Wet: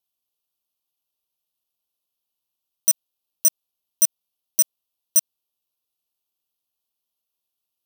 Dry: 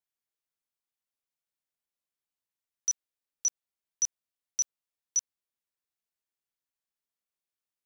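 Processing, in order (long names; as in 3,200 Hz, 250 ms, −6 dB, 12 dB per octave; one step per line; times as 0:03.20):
parametric band 2,400 Hz +13.5 dB 1.2 octaves
bad sample-rate conversion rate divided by 3×, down filtered, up zero stuff
Butterworth band-reject 1,900 Hz, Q 0.86
level +4 dB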